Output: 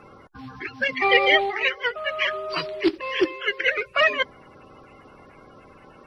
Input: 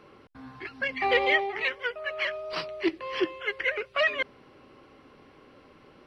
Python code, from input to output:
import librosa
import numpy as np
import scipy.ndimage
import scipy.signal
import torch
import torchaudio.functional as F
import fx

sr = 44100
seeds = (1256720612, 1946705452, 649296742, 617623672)

y = fx.spec_quant(x, sr, step_db=30)
y = y * 10.0 ** (6.5 / 20.0)